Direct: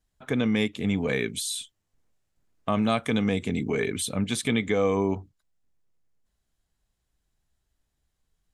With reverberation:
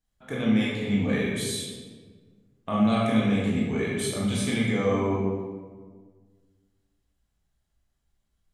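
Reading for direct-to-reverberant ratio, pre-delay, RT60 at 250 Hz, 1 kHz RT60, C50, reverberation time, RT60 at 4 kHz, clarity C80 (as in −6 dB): −6.0 dB, 16 ms, 2.0 s, 1.4 s, −0.5 dB, 1.5 s, 0.95 s, 2.0 dB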